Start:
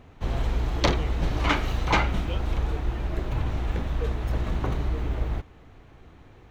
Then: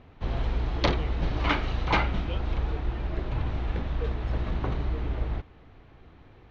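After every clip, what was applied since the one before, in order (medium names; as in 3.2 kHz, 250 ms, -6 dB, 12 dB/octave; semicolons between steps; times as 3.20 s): low-pass 5 kHz 24 dB/octave; trim -2 dB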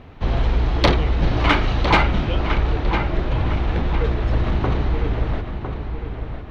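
filtered feedback delay 1005 ms, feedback 41%, low-pass 3.5 kHz, level -8 dB; in parallel at -8 dB: saturation -25.5 dBFS, distortion -11 dB; on the sum: trim +7 dB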